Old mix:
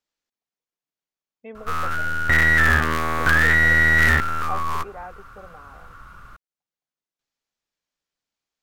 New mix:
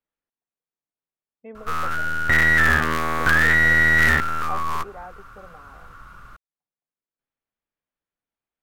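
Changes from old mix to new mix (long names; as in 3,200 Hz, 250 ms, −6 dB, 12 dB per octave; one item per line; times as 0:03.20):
speech: add high-frequency loss of the air 480 metres
background: add parametric band 75 Hz −5.5 dB 0.3 octaves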